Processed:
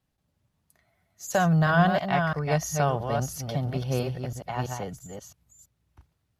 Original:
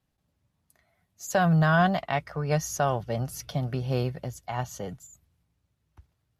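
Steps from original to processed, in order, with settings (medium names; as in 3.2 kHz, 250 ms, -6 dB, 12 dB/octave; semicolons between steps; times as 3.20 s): chunks repeated in reverse 333 ms, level -5 dB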